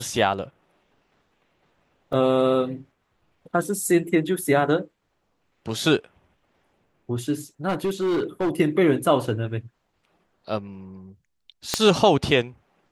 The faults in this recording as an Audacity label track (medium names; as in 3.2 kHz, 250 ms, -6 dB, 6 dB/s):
2.130000	2.130000	dropout 4.3 ms
7.680000	8.500000	clipped -19.5 dBFS
11.740000	11.740000	pop -5 dBFS